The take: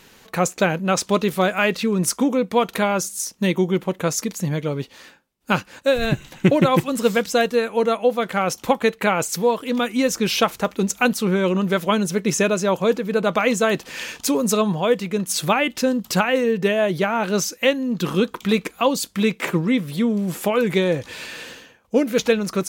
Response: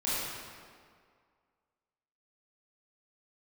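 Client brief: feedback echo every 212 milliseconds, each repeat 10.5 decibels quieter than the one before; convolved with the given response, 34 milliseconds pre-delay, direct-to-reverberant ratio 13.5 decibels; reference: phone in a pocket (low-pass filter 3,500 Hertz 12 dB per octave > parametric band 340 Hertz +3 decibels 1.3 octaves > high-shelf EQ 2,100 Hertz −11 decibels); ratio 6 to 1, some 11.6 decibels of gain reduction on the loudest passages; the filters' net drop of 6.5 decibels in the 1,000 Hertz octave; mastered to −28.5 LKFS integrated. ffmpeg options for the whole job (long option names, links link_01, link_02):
-filter_complex "[0:a]equalizer=frequency=1000:width_type=o:gain=-7,acompressor=threshold=-25dB:ratio=6,aecho=1:1:212|424|636:0.299|0.0896|0.0269,asplit=2[link_01][link_02];[1:a]atrim=start_sample=2205,adelay=34[link_03];[link_02][link_03]afir=irnorm=-1:irlink=0,volume=-22dB[link_04];[link_01][link_04]amix=inputs=2:normalize=0,lowpass=3500,equalizer=frequency=340:width_type=o:width=1.3:gain=3,highshelf=frequency=2100:gain=-11"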